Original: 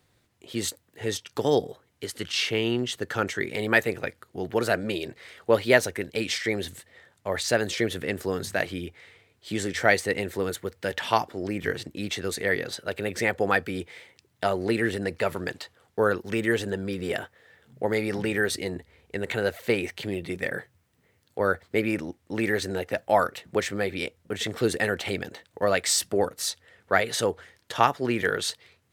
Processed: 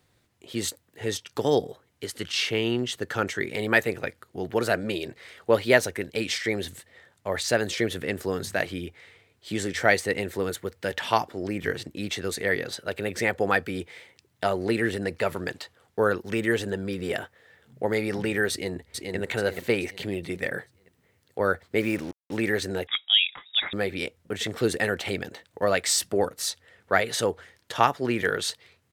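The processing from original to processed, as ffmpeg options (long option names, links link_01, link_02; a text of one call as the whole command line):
ffmpeg -i in.wav -filter_complex "[0:a]asplit=2[link_01][link_02];[link_02]afade=type=in:start_time=18.51:duration=0.01,afade=type=out:start_time=19.16:duration=0.01,aecho=0:1:430|860|1290|1720|2150:0.668344|0.267338|0.106935|0.042774|0.0171096[link_03];[link_01][link_03]amix=inputs=2:normalize=0,asettb=1/sr,asplit=3[link_04][link_05][link_06];[link_04]atrim=end=21.804[link_07];[link_05]atrim=start=21.8:end=22.37,asetpts=PTS-STARTPTS,afade=type=in:duration=0.004:curve=qsin,afade=type=out:start_time=0.566:duration=0.004:curve=qsin,acrusher=bits=6:mix=0:aa=0.5[link_08];[link_06]atrim=start=22.366[link_09];[link_07][link_08]acrossfade=duration=0.004:curve1=hsin:curve2=qsin[link_10];[link_10][link_09]acrossfade=duration=0.004:curve1=qsin:curve2=hsin,asettb=1/sr,asplit=3[link_11][link_12][link_13];[link_11]atrim=end=22.874[link_14];[link_12]atrim=start=22.87:end=23.73,asetpts=PTS-STARTPTS,afade=type=in:duration=0.004:curve=qsin,afade=type=out:start_time=0.856:duration=0.004:curve=qsin,lowpass=frequency=3300:width_type=q:width=0.5098,lowpass=frequency=3300:width_type=q:width=0.6013,lowpass=frequency=3300:width_type=q:width=0.9,lowpass=frequency=3300:width_type=q:width=2.563,afreqshift=-3900[link_15];[link_13]atrim=start=23.726[link_16];[link_14][link_15]acrossfade=duration=0.004:curve1=hsin:curve2=qsin[link_17];[link_17][link_16]acrossfade=duration=0.004:curve1=qsin:curve2=hsin" out.wav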